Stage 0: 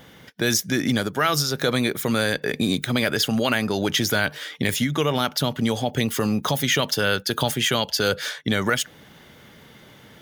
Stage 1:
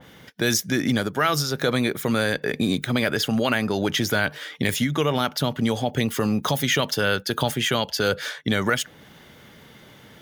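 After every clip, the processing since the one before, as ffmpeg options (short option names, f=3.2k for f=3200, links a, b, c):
-af "adynamicequalizer=threshold=0.0141:dfrequency=2900:dqfactor=0.7:tfrequency=2900:tqfactor=0.7:attack=5:release=100:ratio=0.375:range=2:mode=cutabove:tftype=highshelf"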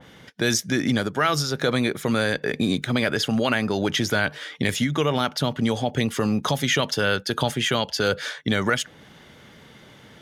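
-af "lowpass=9.8k"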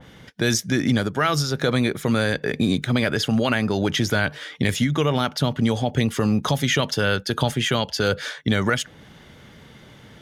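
-af "lowshelf=f=130:g=8.5"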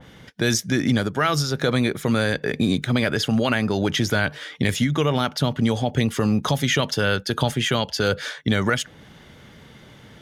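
-af anull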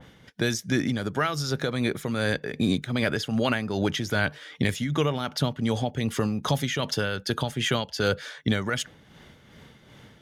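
-af "tremolo=f=2.6:d=0.52,volume=-2.5dB"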